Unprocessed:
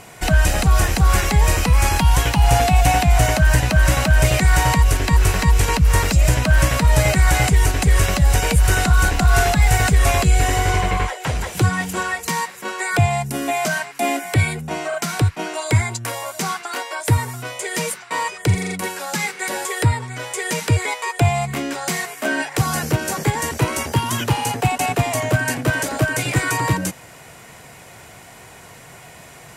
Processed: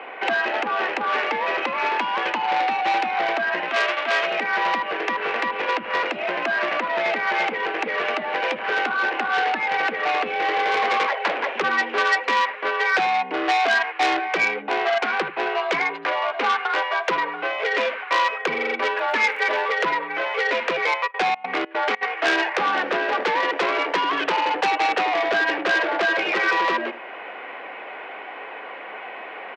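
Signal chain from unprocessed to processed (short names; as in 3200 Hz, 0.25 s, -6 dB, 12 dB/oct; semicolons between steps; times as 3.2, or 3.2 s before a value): 3.68–4.25 spectral whitening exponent 0.1; on a send: echo 78 ms -17 dB; on the sum: vocal rider within 4 dB 0.5 s; mistuned SSB +50 Hz 300–2800 Hz; 18.96–19.63 crackle 18/s -> 76/s -39 dBFS; 21.06–22.01 step gate "xx.xx.xx." 149 bpm -24 dB; in parallel at 0 dB: compressor, threshold -35 dBFS, peak gain reduction 19.5 dB; on the sum: core saturation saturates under 2900 Hz; gain +1 dB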